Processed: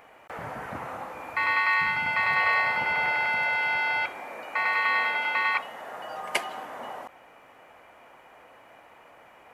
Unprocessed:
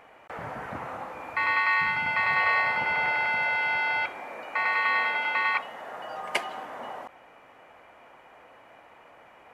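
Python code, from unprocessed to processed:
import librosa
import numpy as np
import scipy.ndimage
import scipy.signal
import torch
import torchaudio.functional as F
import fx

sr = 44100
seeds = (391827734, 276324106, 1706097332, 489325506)

y = fx.high_shelf(x, sr, hz=8200.0, db=9.0)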